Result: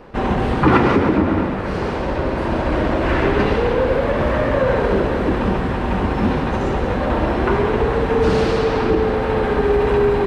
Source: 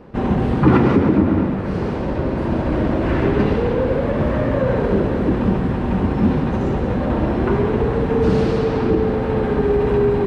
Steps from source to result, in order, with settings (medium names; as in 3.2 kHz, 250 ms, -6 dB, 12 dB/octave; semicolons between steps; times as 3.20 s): peaking EQ 160 Hz -10.5 dB 2.9 oct; trim +6.5 dB